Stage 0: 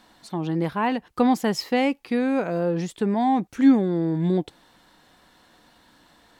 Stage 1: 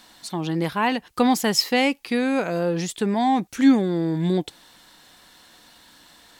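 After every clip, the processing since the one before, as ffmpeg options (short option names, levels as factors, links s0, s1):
-af "highshelf=f=2200:g=11.5"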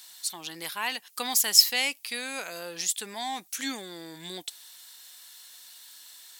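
-af "aderivative,volume=2.11"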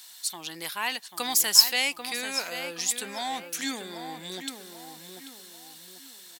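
-filter_complex "[0:a]asplit=2[s0][s1];[s1]adelay=790,lowpass=f=2300:p=1,volume=0.447,asplit=2[s2][s3];[s3]adelay=790,lowpass=f=2300:p=1,volume=0.41,asplit=2[s4][s5];[s5]adelay=790,lowpass=f=2300:p=1,volume=0.41,asplit=2[s6][s7];[s7]adelay=790,lowpass=f=2300:p=1,volume=0.41,asplit=2[s8][s9];[s9]adelay=790,lowpass=f=2300:p=1,volume=0.41[s10];[s0][s2][s4][s6][s8][s10]amix=inputs=6:normalize=0,volume=1.12"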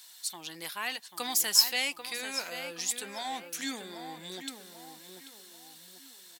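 -af "flanger=delay=1.9:depth=2.4:regen=-76:speed=0.95:shape=sinusoidal"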